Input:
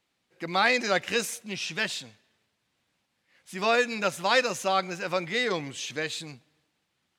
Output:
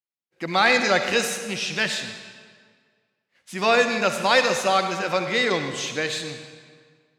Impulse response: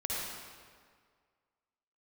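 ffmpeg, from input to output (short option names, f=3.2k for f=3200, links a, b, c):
-filter_complex "[0:a]agate=range=-33dB:threshold=-57dB:ratio=3:detection=peak,acontrast=73,asplit=2[a][b];[b]highshelf=f=8.2k:g=10.5[c];[1:a]atrim=start_sample=2205,lowpass=7.3k[d];[c][d]afir=irnorm=-1:irlink=0,volume=-9dB[e];[a][e]amix=inputs=2:normalize=0,volume=-4dB"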